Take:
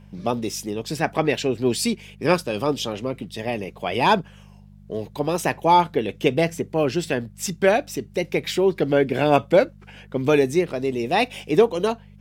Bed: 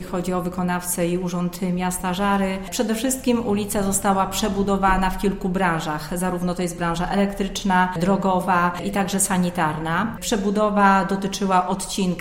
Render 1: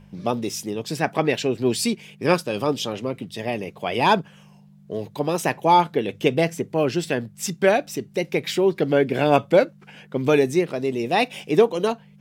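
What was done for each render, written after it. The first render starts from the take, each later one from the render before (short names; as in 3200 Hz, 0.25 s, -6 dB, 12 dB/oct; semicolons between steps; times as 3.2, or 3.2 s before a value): de-hum 50 Hz, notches 2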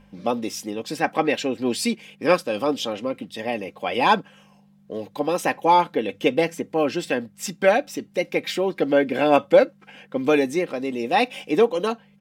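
tone controls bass -6 dB, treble -4 dB; comb 3.8 ms, depth 51%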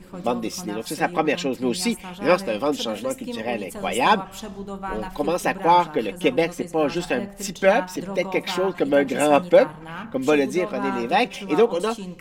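add bed -13 dB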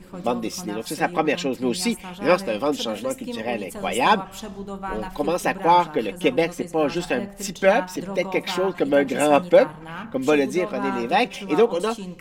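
nothing audible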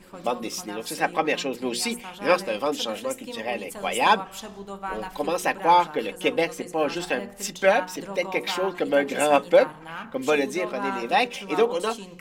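low shelf 310 Hz -9 dB; notches 60/120/180/240/300/360/420/480 Hz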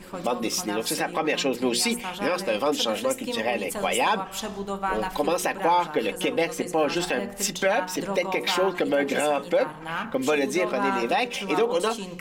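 in parallel at +1 dB: compressor, threshold -30 dBFS, peak gain reduction 17.5 dB; on the sum: limiter -13 dBFS, peak gain reduction 10.5 dB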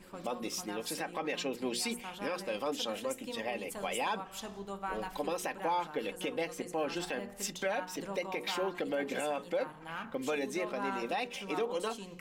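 gain -11 dB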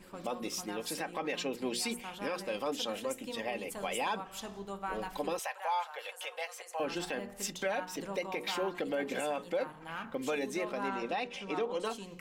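5.39–6.8 steep high-pass 590 Hz; 10.88–11.85 air absorption 62 m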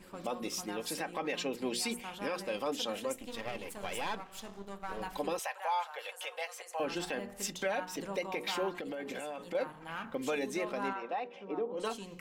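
3.16–5.01 half-wave gain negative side -12 dB; 8.76–9.55 compressor, threshold -36 dBFS; 10.92–11.77 band-pass 1300 Hz -> 250 Hz, Q 0.83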